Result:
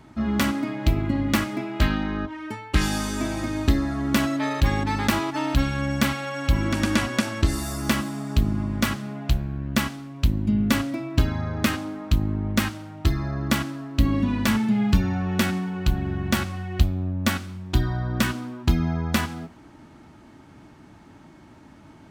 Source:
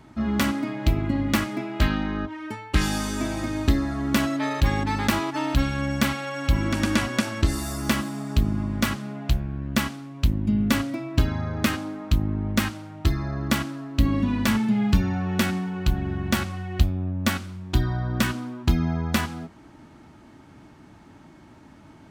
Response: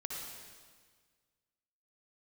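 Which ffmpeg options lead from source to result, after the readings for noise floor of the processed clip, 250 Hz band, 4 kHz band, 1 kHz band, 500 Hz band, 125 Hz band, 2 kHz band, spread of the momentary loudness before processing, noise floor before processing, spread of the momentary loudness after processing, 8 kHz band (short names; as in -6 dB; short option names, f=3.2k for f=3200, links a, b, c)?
-49 dBFS, +0.5 dB, +0.5 dB, +0.5 dB, +0.5 dB, +0.5 dB, +0.5 dB, 5 LU, -49 dBFS, 5 LU, +0.5 dB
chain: -filter_complex "[0:a]asplit=2[a][b];[1:a]atrim=start_sample=2205,asetrate=88200,aresample=44100[c];[b][c]afir=irnorm=-1:irlink=0,volume=-14.5dB[d];[a][d]amix=inputs=2:normalize=0"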